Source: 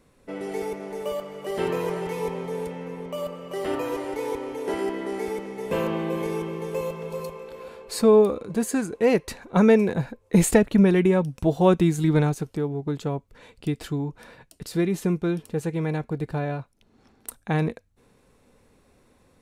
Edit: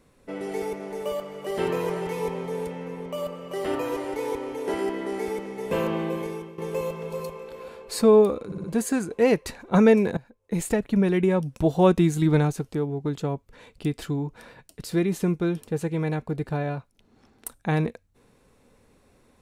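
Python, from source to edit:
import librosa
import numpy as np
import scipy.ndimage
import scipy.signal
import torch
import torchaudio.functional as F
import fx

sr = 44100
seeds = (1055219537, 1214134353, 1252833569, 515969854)

y = fx.edit(x, sr, fx.fade_out_to(start_s=6.03, length_s=0.55, floor_db=-14.5),
    fx.stutter(start_s=8.46, slice_s=0.06, count=4),
    fx.fade_in_from(start_s=9.99, length_s=1.44, floor_db=-19.5), tone=tone)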